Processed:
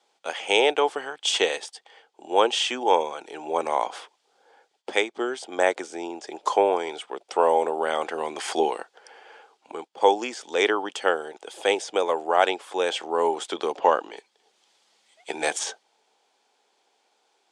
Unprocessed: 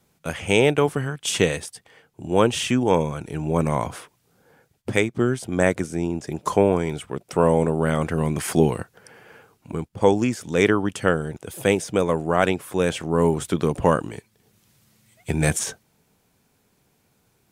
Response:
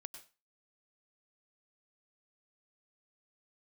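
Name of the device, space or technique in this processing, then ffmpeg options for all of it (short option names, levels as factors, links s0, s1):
phone speaker on a table: -filter_complex "[0:a]highpass=f=380:w=0.5412,highpass=f=380:w=1.3066,equalizer=f=820:t=q:w=4:g=9,equalizer=f=3300:t=q:w=4:g=7,equalizer=f=4600:t=q:w=4:g=4,lowpass=f=8100:w=0.5412,lowpass=f=8100:w=1.3066,asettb=1/sr,asplit=3[s0][s1][s2];[s0]atrim=end=13.754[s3];[s1]atrim=start=13.75:end=14.17,asetpts=PTS-STARTPTS,afade=t=in:d=0.004:c=qsin,afade=t=out:st=0.416:d=0.004:c=qsin,lowpass=f=6300:w=0.5412,lowpass=f=6300:w=1.3066[s4];[s2]atrim=start=14.166[s5];[s3][s4]acrossfade=d=0.004:c1=hsin:c2=qsin[s6];[s6][s5]acrossfade=d=0.004:c1=qsin:c2=hsin,volume=0.794"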